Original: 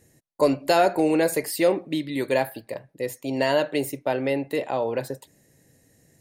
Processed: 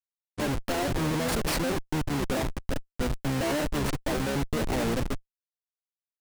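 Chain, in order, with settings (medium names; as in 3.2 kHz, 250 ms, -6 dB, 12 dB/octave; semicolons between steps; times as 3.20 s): Schmitt trigger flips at -29 dBFS; harmony voices -12 st -1 dB; trim -4.5 dB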